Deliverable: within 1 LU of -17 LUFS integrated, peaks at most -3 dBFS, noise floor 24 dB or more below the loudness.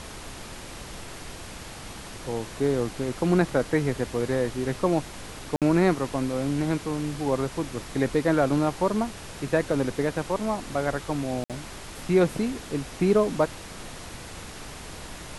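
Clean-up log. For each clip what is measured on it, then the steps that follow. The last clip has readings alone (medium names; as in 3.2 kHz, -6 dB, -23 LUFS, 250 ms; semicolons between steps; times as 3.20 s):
dropouts 2; longest dropout 57 ms; noise floor -41 dBFS; noise floor target -51 dBFS; loudness -26.5 LUFS; peak level -9.5 dBFS; loudness target -17.0 LUFS
-> interpolate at 5.56/11.44 s, 57 ms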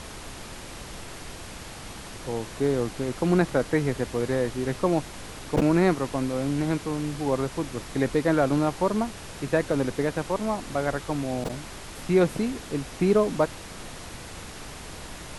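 dropouts 0; noise floor -41 dBFS; noise floor target -50 dBFS
-> noise print and reduce 9 dB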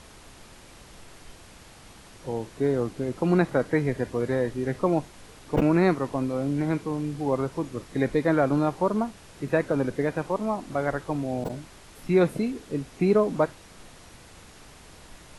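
noise floor -50 dBFS; noise floor target -51 dBFS
-> noise print and reduce 6 dB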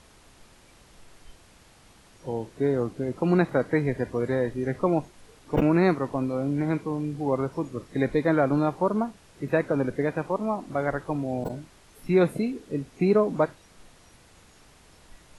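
noise floor -55 dBFS; loudness -26.5 LUFS; peak level -9.5 dBFS; loudness target -17.0 LUFS
-> trim +9.5 dB; peak limiter -3 dBFS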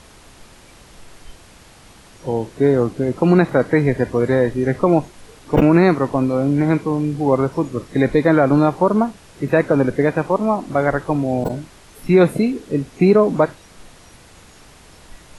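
loudness -17.5 LUFS; peak level -3.0 dBFS; noise floor -46 dBFS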